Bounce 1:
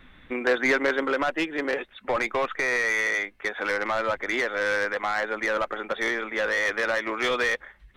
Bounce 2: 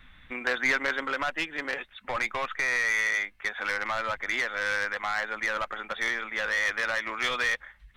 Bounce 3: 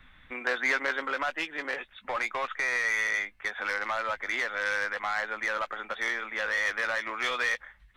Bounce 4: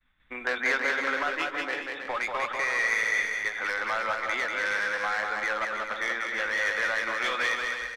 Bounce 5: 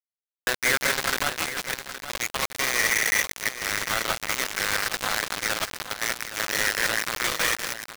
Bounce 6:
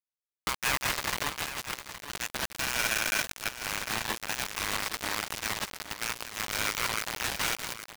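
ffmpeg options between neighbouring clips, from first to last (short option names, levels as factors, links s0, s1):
-af "equalizer=f=380:w=0.77:g=-12.5"
-filter_complex "[0:a]acrossover=split=280|2100[s0][s1][s2];[s0]acompressor=threshold=0.00178:ratio=4[s3];[s2]flanger=delay=17:depth=2.7:speed=1.2[s4];[s3][s1][s4]amix=inputs=3:normalize=0"
-af "aecho=1:1:190|323|416.1|481.3|526.9:0.631|0.398|0.251|0.158|0.1,agate=range=0.0224:threshold=0.00631:ratio=3:detection=peak"
-filter_complex "[0:a]acrusher=bits=3:mix=0:aa=0.000001,asplit=2[s0][s1];[s1]aecho=0:1:817:0.266[s2];[s0][s2]amix=inputs=2:normalize=0,volume=1.26"
-af "aeval=exprs='val(0)*sgn(sin(2*PI*440*n/s))':c=same,volume=0.501"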